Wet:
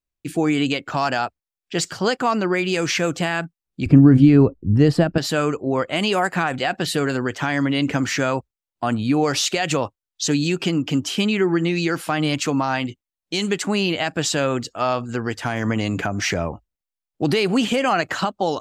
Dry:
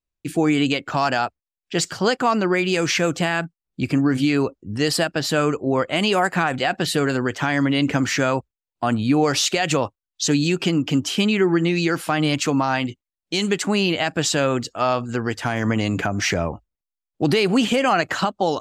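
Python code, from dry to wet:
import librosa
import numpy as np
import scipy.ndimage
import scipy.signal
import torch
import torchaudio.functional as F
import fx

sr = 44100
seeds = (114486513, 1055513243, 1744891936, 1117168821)

y = fx.tilt_eq(x, sr, slope=-4.5, at=(3.86, 5.18))
y = y * librosa.db_to_amplitude(-1.0)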